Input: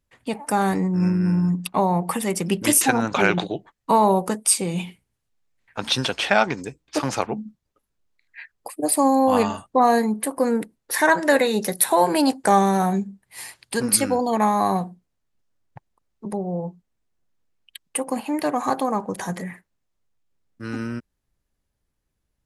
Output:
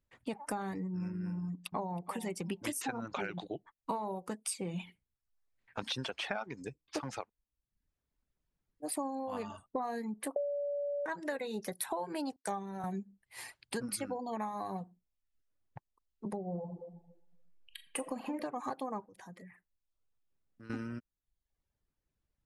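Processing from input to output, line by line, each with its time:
0:01.40–0:02.02: delay throw 320 ms, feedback 20%, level −15 dB
0:07.22–0:08.88: fill with room tone, crossfade 0.16 s
0:10.36–0:11.06: beep over 574 Hz −8.5 dBFS
0:12.36–0:12.84: multiband upward and downward expander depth 100%
0:16.46–0:18.37: thrown reverb, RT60 1.1 s, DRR 3.5 dB
0:19.05–0:20.70: downward compressor 2.5 to 1, threshold −49 dBFS
whole clip: high-shelf EQ 5,600 Hz −8 dB; downward compressor 6 to 1, threshold −28 dBFS; reverb reduction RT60 0.66 s; level −6 dB

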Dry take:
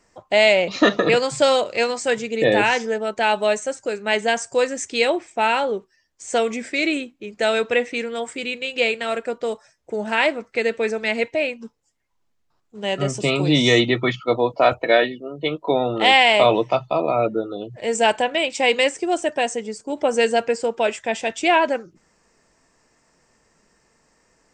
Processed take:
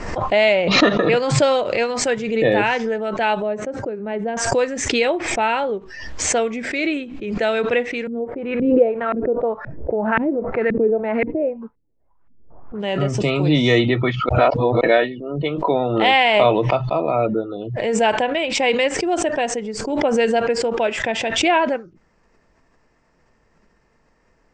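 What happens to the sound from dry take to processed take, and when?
0:03.42–0:04.37: resonant band-pass 230 Hz, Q 0.57
0:08.07–0:12.80: auto-filter low-pass saw up 1.9 Hz 210–1,800 Hz
0:14.29–0:14.81: reverse
whole clip: Bessel low-pass filter 2,900 Hz, order 2; low-shelf EQ 80 Hz +10 dB; background raised ahead of every attack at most 46 dB per second

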